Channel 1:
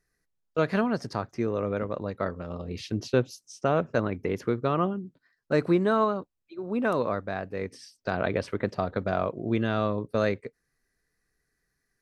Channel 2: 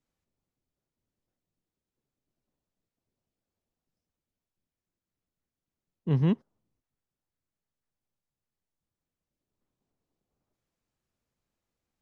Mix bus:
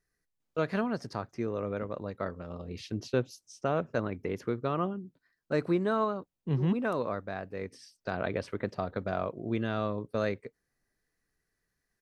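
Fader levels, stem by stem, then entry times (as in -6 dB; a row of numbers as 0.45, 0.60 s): -5.0, -4.0 dB; 0.00, 0.40 s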